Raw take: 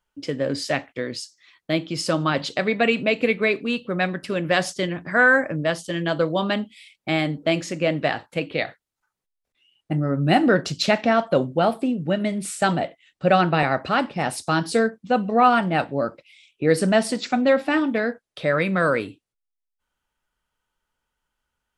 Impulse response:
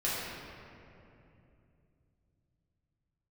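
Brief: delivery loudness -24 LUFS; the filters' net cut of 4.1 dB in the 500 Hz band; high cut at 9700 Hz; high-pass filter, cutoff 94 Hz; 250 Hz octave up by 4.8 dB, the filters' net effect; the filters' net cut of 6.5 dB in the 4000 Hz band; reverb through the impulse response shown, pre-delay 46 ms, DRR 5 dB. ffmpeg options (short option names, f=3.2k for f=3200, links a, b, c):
-filter_complex "[0:a]highpass=94,lowpass=9.7k,equalizer=f=250:t=o:g=8,equalizer=f=500:t=o:g=-7,equalizer=f=4k:t=o:g=-9,asplit=2[a][b];[1:a]atrim=start_sample=2205,adelay=46[c];[b][c]afir=irnorm=-1:irlink=0,volume=-13.5dB[d];[a][d]amix=inputs=2:normalize=0,volume=-3.5dB"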